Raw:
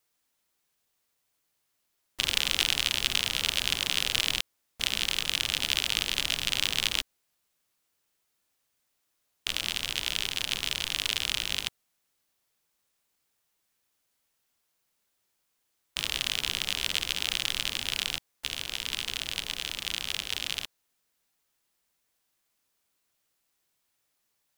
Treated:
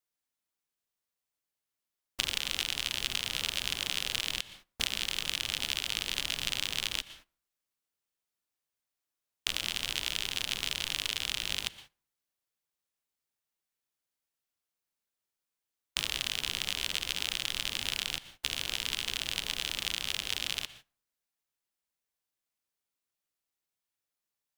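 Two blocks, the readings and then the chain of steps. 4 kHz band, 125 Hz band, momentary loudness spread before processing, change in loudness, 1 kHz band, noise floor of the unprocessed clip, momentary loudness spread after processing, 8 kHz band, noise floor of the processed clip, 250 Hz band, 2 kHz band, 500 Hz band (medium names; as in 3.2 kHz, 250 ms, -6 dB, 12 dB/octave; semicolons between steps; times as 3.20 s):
-4.0 dB, -3.5 dB, 7 LU, -4.0 dB, -3.5 dB, -77 dBFS, 3 LU, -3.5 dB, under -85 dBFS, -3.5 dB, -4.0 dB, -3.5 dB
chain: plate-style reverb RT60 0.6 s, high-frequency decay 0.55×, pre-delay 105 ms, DRR 18 dB; gate -53 dBFS, range -16 dB; compression 6:1, threshold -30 dBFS, peak gain reduction 11.5 dB; trim +3.5 dB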